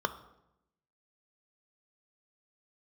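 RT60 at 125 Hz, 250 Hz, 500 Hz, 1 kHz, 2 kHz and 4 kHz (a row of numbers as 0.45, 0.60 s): 1.1, 1.1, 0.90, 0.80, 0.70, 0.60 s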